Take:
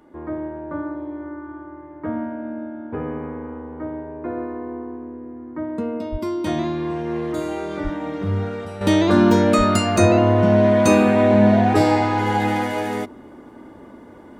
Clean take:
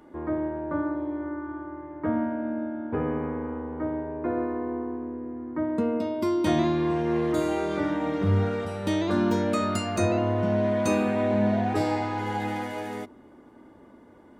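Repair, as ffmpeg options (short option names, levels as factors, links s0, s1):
-filter_complex "[0:a]asplit=3[s0][s1][s2];[s0]afade=t=out:st=6.11:d=0.02[s3];[s1]highpass=f=140:w=0.5412,highpass=f=140:w=1.3066,afade=t=in:st=6.11:d=0.02,afade=t=out:st=6.23:d=0.02[s4];[s2]afade=t=in:st=6.23:d=0.02[s5];[s3][s4][s5]amix=inputs=3:normalize=0,asplit=3[s6][s7][s8];[s6]afade=t=out:st=7.83:d=0.02[s9];[s7]highpass=f=140:w=0.5412,highpass=f=140:w=1.3066,afade=t=in:st=7.83:d=0.02,afade=t=out:st=7.95:d=0.02[s10];[s8]afade=t=in:st=7.95:d=0.02[s11];[s9][s10][s11]amix=inputs=3:normalize=0,asplit=3[s12][s13][s14];[s12]afade=t=out:st=9.57:d=0.02[s15];[s13]highpass=f=140:w=0.5412,highpass=f=140:w=1.3066,afade=t=in:st=9.57:d=0.02,afade=t=out:st=9.69:d=0.02[s16];[s14]afade=t=in:st=9.69:d=0.02[s17];[s15][s16][s17]amix=inputs=3:normalize=0,asetnsamples=n=441:p=0,asendcmd='8.81 volume volume -9.5dB',volume=1"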